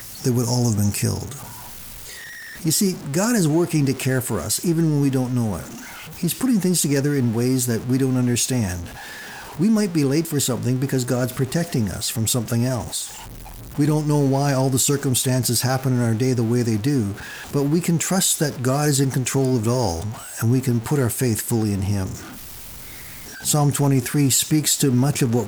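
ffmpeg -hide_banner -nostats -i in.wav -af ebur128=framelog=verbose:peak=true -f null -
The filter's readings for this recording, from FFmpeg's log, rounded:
Integrated loudness:
  I:         -20.5 LUFS
  Threshold: -31.1 LUFS
Loudness range:
  LRA:         2.8 LU
  Threshold: -41.3 LUFS
  LRA low:   -22.8 LUFS
  LRA high:  -20.0 LUFS
True peak:
  Peak:       -6.5 dBFS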